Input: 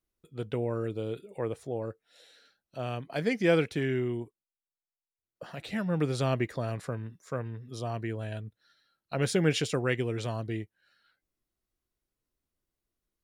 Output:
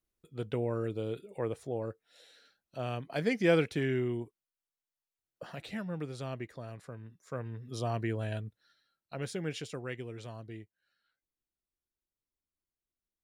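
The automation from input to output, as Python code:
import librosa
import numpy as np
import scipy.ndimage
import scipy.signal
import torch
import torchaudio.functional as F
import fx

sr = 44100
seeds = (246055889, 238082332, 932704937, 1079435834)

y = fx.gain(x, sr, db=fx.line((5.52, -1.5), (6.07, -11.0), (6.89, -11.0), (7.76, 1.0), (8.35, 1.0), (9.37, -11.0)))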